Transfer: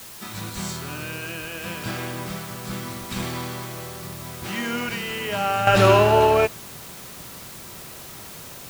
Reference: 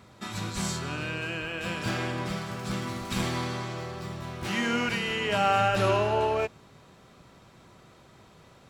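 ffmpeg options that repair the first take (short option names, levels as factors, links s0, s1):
-af "afwtdn=0.0089,asetnsamples=n=441:p=0,asendcmd='5.67 volume volume -9.5dB',volume=1"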